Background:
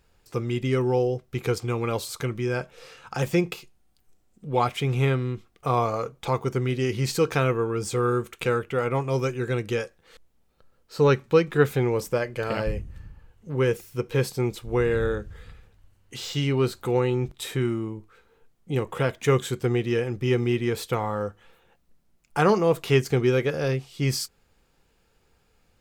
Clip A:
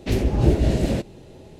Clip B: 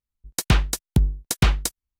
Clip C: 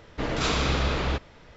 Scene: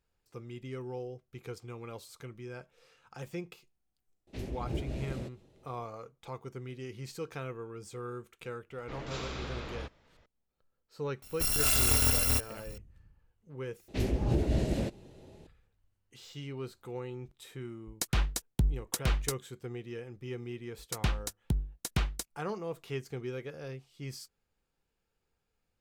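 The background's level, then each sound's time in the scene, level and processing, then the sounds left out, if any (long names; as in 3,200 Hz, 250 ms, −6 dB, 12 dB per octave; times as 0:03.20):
background −17 dB
0:04.27: mix in A −18 dB
0:08.70: mix in C −14.5 dB
0:11.22: mix in C −1 dB + samples in bit-reversed order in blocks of 256 samples
0:13.88: overwrite with A −9 dB + brickwall limiter −8.5 dBFS
0:17.63: mix in B −7 dB + brickwall limiter −11 dBFS
0:20.54: mix in B −12 dB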